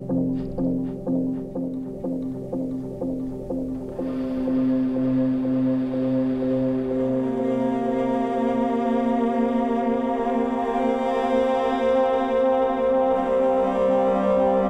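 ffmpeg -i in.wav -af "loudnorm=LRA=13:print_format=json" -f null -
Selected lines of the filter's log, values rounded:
"input_i" : "-22.7",
"input_tp" : "-9.6",
"input_lra" : "6.7",
"input_thresh" : "-32.7",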